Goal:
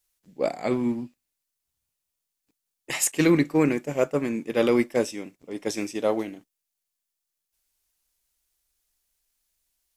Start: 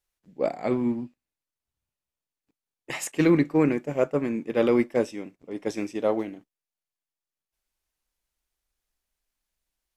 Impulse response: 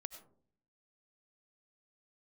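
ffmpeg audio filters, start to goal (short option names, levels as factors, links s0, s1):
-af "highshelf=f=3700:g=12"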